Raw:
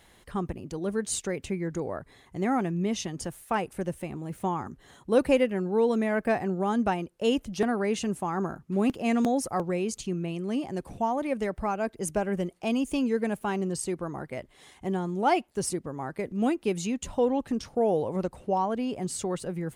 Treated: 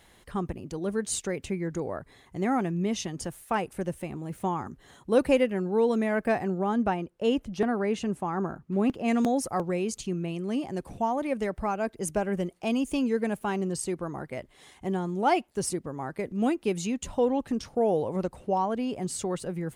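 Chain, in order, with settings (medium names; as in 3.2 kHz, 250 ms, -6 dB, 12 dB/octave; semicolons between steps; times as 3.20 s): 6.58–9.08 s: treble shelf 4 kHz -9.5 dB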